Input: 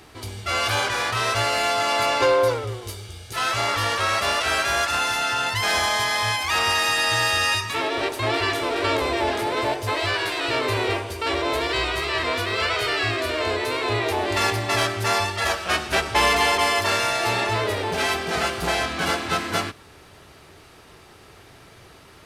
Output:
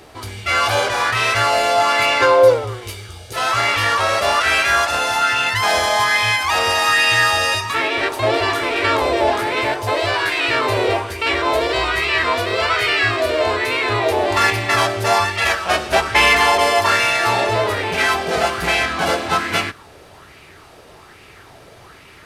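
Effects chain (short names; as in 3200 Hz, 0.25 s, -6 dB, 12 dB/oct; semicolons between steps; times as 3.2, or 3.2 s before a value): LFO bell 1.2 Hz 520–2500 Hz +9 dB; gain +2.5 dB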